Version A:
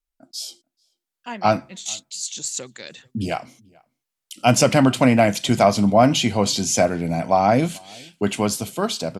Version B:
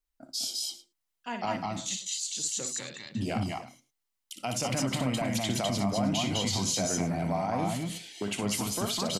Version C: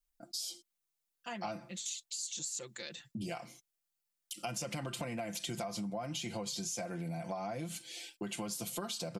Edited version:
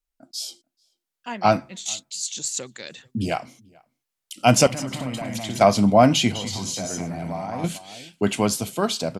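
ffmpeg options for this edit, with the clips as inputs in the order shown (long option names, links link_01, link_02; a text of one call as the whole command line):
ffmpeg -i take0.wav -i take1.wav -filter_complex "[1:a]asplit=2[link_01][link_02];[0:a]asplit=3[link_03][link_04][link_05];[link_03]atrim=end=4.672[link_06];[link_01]atrim=start=4.668:end=5.612[link_07];[link_04]atrim=start=5.608:end=6.322[link_08];[link_02]atrim=start=6.318:end=7.642[link_09];[link_05]atrim=start=7.638[link_10];[link_06][link_07]acrossfade=duration=0.004:curve1=hsin:curve2=hsin[link_11];[link_11][link_08]acrossfade=duration=0.004:curve1=hsin:curve2=hsin[link_12];[link_12][link_09]acrossfade=duration=0.004:curve1=hsin:curve2=hsin[link_13];[link_13][link_10]acrossfade=duration=0.004:curve1=hsin:curve2=hsin" out.wav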